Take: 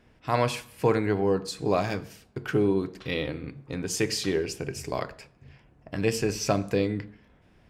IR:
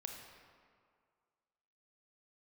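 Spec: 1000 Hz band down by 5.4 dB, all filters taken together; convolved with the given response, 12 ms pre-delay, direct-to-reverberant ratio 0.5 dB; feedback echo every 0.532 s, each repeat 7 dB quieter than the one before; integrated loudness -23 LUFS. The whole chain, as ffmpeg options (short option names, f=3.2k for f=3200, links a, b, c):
-filter_complex "[0:a]equalizer=f=1k:t=o:g=-7.5,aecho=1:1:532|1064|1596|2128|2660:0.447|0.201|0.0905|0.0407|0.0183,asplit=2[a][b];[1:a]atrim=start_sample=2205,adelay=12[c];[b][c]afir=irnorm=-1:irlink=0,volume=2dB[d];[a][d]amix=inputs=2:normalize=0,volume=3.5dB"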